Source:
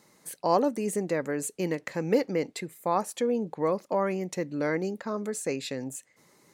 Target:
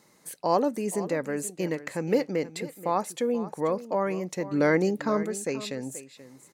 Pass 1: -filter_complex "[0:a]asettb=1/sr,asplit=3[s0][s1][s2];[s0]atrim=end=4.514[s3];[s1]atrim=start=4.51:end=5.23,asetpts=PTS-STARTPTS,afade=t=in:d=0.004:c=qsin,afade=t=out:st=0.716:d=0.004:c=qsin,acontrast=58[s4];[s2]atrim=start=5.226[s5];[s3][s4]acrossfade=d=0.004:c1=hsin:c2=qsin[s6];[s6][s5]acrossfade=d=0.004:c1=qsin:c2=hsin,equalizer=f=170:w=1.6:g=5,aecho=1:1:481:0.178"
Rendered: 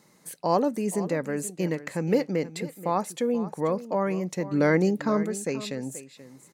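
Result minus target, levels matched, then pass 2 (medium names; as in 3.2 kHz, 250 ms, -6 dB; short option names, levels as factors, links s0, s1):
125 Hz band +3.5 dB
-filter_complex "[0:a]asettb=1/sr,asplit=3[s0][s1][s2];[s0]atrim=end=4.514[s3];[s1]atrim=start=4.51:end=5.23,asetpts=PTS-STARTPTS,afade=t=in:d=0.004:c=qsin,afade=t=out:st=0.716:d=0.004:c=qsin,acontrast=58[s4];[s2]atrim=start=5.226[s5];[s3][s4]acrossfade=d=0.004:c1=hsin:c2=qsin[s6];[s6][s5]acrossfade=d=0.004:c1=qsin:c2=hsin,aecho=1:1:481:0.178"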